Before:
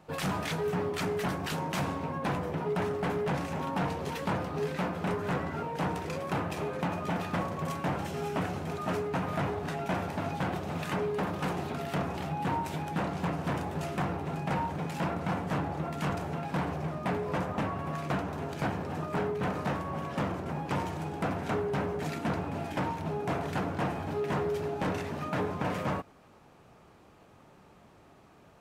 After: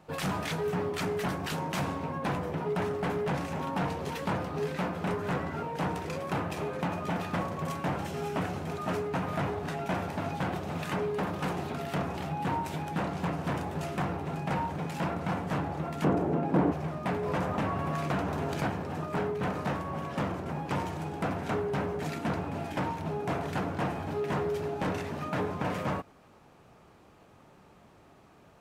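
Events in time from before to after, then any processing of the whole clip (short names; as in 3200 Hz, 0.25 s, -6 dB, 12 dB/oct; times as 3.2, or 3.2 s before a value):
16.04–16.72 EQ curve 110 Hz 0 dB, 320 Hz +13 dB, 830 Hz +3 dB, 4300 Hz -9 dB
17.23–18.68 fast leveller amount 50%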